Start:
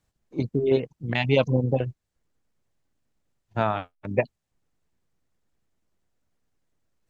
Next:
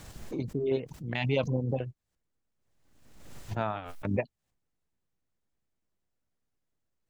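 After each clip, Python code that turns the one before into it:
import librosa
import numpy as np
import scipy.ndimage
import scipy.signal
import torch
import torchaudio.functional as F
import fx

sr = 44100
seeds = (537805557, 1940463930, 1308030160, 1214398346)

y = fx.pre_swell(x, sr, db_per_s=47.0)
y = F.gain(torch.from_numpy(y), -8.0).numpy()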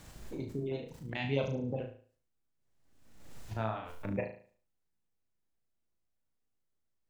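y = fx.room_flutter(x, sr, wall_m=6.2, rt60_s=0.45)
y = F.gain(torch.from_numpy(y), -6.0).numpy()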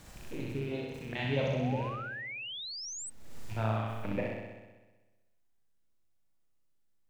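y = fx.rattle_buzz(x, sr, strikes_db=-47.0, level_db=-40.0)
y = fx.room_flutter(y, sr, wall_m=10.9, rt60_s=1.2)
y = fx.spec_paint(y, sr, seeds[0], shape='rise', start_s=1.45, length_s=1.65, low_hz=510.0, high_hz=8400.0, level_db=-41.0)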